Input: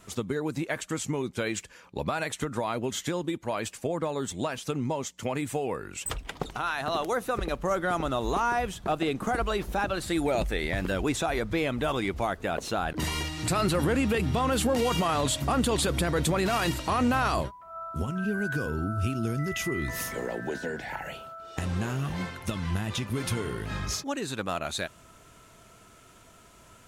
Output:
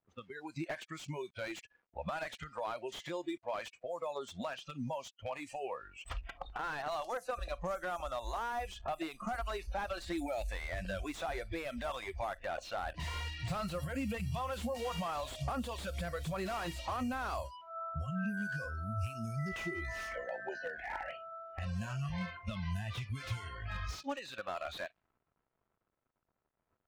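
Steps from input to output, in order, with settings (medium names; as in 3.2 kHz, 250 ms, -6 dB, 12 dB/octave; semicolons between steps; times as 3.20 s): word length cut 8-bit, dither none; level-controlled noise filter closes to 1.1 kHz, open at -22.5 dBFS; compression 12:1, threshold -29 dBFS, peak gain reduction 9 dB; spectral noise reduction 21 dB; slew-rate limiter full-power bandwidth 31 Hz; trim -2.5 dB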